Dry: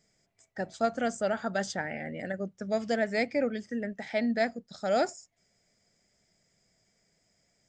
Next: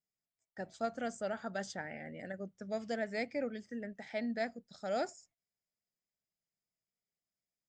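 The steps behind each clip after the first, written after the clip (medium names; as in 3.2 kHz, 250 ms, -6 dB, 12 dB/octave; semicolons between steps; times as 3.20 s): gate -58 dBFS, range -19 dB; trim -8.5 dB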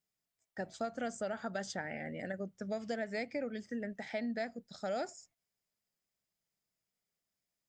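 compression 4:1, threshold -39 dBFS, peak gain reduction 8 dB; trim +4.5 dB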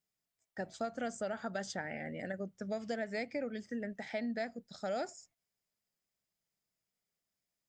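no audible change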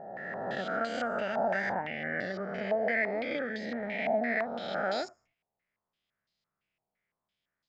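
reverse spectral sustain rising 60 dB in 1.98 s; step-sequenced low-pass 5.9 Hz 800–4200 Hz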